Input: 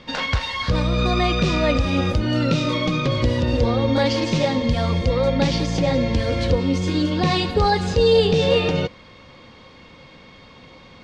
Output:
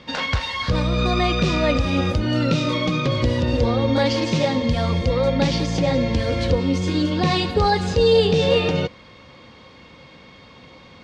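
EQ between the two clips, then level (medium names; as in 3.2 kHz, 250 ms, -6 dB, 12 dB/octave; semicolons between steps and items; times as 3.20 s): high-pass 45 Hz; 0.0 dB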